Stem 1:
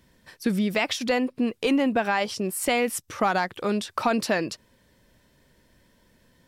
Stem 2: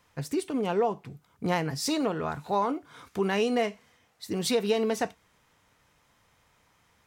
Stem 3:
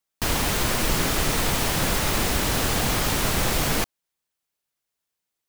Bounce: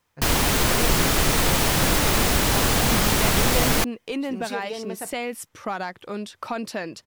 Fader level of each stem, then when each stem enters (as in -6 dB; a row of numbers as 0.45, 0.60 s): -6.0, -7.0, +3.0 dB; 2.45, 0.00, 0.00 s